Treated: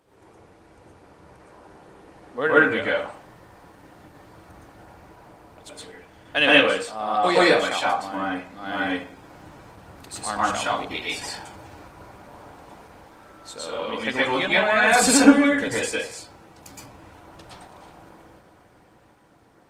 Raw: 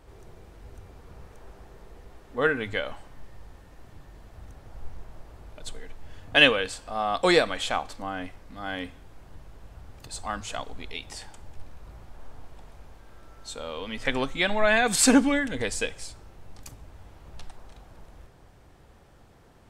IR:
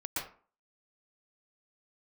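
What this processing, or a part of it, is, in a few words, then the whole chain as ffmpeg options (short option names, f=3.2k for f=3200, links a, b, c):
far-field microphone of a smart speaker: -filter_complex "[1:a]atrim=start_sample=2205[a];[0:a][a]afir=irnorm=-1:irlink=0,highpass=160,dynaudnorm=f=200:g=17:m=7.5dB" -ar 48000 -c:a libopus -b:a 20k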